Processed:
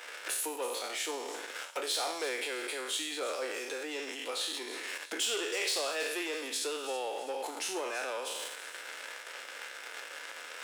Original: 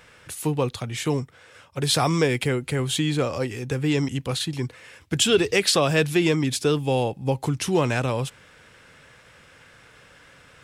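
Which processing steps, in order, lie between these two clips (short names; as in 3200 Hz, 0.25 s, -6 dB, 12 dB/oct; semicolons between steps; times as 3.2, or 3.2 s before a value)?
spectral trails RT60 0.73 s; notch 1100 Hz, Q 12; sample leveller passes 2; limiter -33 dBFS, peak gain reduction 28.5 dB; transient shaper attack +5 dB, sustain -6 dB; Bessel high-pass 560 Hz, order 8; on a send: thin delay 0.327 s, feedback 44%, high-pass 4200 Hz, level -11 dB; on the sum: gain +8 dB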